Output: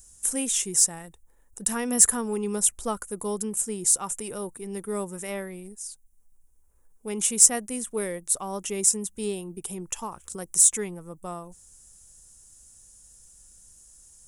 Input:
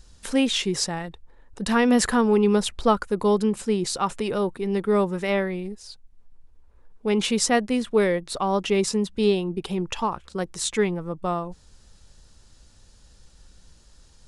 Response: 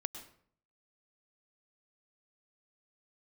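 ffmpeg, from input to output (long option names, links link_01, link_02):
-filter_complex "[0:a]asplit=3[link_01][link_02][link_03];[link_01]afade=type=out:start_time=10.02:duration=0.02[link_04];[link_02]acompressor=mode=upward:threshold=-23dB:ratio=2.5,afade=type=in:start_time=10.02:duration=0.02,afade=type=out:start_time=10.85:duration=0.02[link_05];[link_03]afade=type=in:start_time=10.85:duration=0.02[link_06];[link_04][link_05][link_06]amix=inputs=3:normalize=0,aexciter=amount=13.2:drive=7.2:freq=6500,volume=-10dB"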